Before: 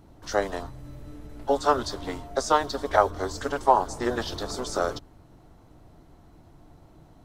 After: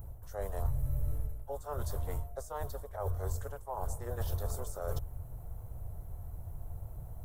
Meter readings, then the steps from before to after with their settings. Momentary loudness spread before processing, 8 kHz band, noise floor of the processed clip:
19 LU, -10.5 dB, -47 dBFS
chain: reverse; compression 8:1, threshold -36 dBFS, peak gain reduction 22.5 dB; reverse; FFT filter 100 Hz 0 dB, 290 Hz -27 dB, 490 Hz -11 dB, 4.7 kHz -27 dB, 13 kHz +5 dB; trim +13 dB

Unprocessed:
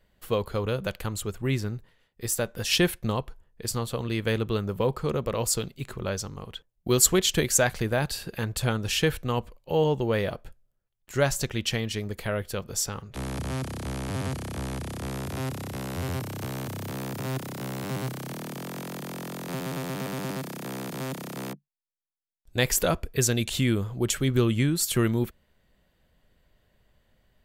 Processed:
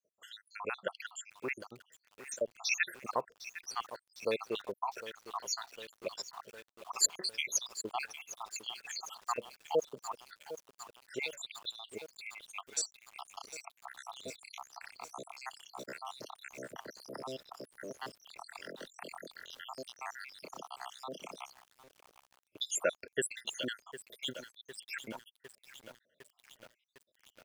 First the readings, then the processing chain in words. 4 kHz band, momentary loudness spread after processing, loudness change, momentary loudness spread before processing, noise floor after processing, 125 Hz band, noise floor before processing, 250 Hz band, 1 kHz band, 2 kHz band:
-9.0 dB, 17 LU, -11.5 dB, 12 LU, -81 dBFS, -32.5 dB, -73 dBFS, -21.5 dB, -6.5 dB, -8.0 dB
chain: random holes in the spectrogram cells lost 83%; band-pass 550–6400 Hz; bit-crushed delay 755 ms, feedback 80%, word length 8-bit, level -13.5 dB; trim +1 dB

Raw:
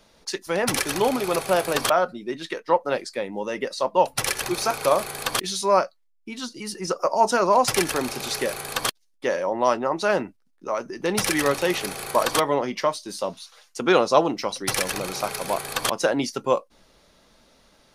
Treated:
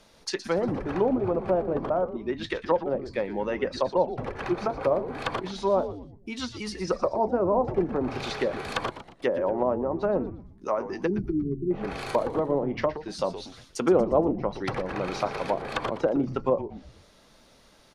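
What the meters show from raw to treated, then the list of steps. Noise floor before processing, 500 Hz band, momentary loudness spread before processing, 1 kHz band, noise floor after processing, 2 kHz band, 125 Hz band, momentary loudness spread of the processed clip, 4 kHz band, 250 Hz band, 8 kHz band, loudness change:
-63 dBFS, -2.0 dB, 11 LU, -7.0 dB, -57 dBFS, -9.0 dB, +2.0 dB, 9 LU, -11.0 dB, +0.5 dB, -18.0 dB, -4.0 dB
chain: low-pass that closes with the level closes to 540 Hz, closed at -19.5 dBFS; spectral selection erased 11.07–11.71 s, 410–10000 Hz; frequency-shifting echo 118 ms, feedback 44%, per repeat -150 Hz, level -12 dB

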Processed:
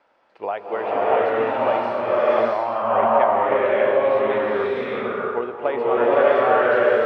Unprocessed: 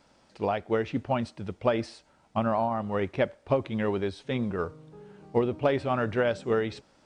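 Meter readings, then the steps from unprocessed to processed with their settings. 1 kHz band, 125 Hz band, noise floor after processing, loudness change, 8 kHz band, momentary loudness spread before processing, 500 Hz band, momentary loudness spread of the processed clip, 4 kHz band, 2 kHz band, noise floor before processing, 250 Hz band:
+12.5 dB, -8.0 dB, -56 dBFS, +9.5 dB, no reading, 7 LU, +10.5 dB, 9 LU, +4.0 dB, +11.0 dB, -63 dBFS, +0.5 dB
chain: three-band isolator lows -22 dB, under 390 Hz, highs -24 dB, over 2.8 kHz; swelling reverb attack 660 ms, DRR -9 dB; trim +3 dB

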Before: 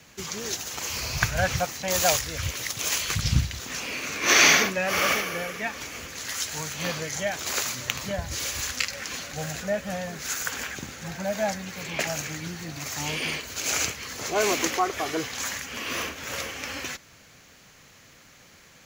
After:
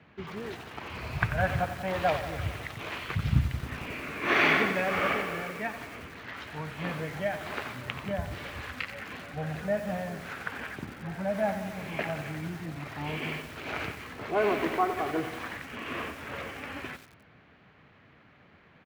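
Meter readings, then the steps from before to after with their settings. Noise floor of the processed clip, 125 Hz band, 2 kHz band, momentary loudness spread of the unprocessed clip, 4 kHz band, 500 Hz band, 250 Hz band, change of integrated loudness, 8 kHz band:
-58 dBFS, -0.5 dB, -4.5 dB, 10 LU, -12.5 dB, -1.5 dB, 0.0 dB, -5.5 dB, -25.5 dB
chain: median filter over 5 samples; high-pass 68 Hz 12 dB/octave; distance through air 480 m; band-stop 520 Hz, Q 12; delay 153 ms -22 dB; bit-crushed delay 90 ms, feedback 80%, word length 7-bit, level -10.5 dB

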